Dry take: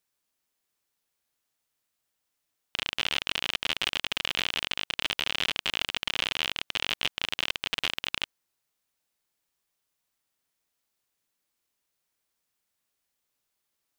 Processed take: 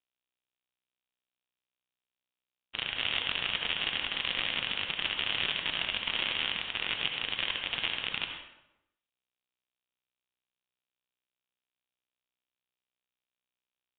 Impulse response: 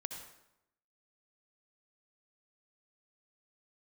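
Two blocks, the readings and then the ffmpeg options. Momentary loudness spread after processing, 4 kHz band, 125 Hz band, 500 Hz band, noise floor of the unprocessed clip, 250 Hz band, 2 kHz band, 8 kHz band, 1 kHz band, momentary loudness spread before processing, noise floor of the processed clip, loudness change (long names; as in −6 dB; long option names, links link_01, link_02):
4 LU, −1.5 dB, −1.0 dB, −2.5 dB, −81 dBFS, −2.0 dB, −1.0 dB, below −35 dB, −2.5 dB, 4 LU, below −85 dBFS, −1.5 dB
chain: -filter_complex "[0:a]acrusher=bits=5:mix=0:aa=0.5[link_01];[1:a]atrim=start_sample=2205[link_02];[link_01][link_02]afir=irnorm=-1:irlink=0,volume=1dB" -ar 8000 -c:a nellymoser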